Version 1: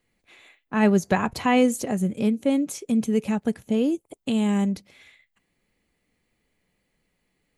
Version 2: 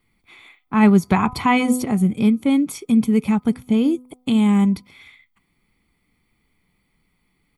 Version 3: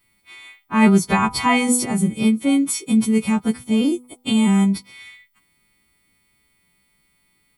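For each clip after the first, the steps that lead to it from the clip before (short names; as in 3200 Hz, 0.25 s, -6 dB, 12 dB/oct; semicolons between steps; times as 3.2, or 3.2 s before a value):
bell 6600 Hz -9 dB 0.52 oct; comb 0.9 ms, depth 62%; de-hum 251 Hz, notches 5; gain +4 dB
frequency quantiser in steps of 2 st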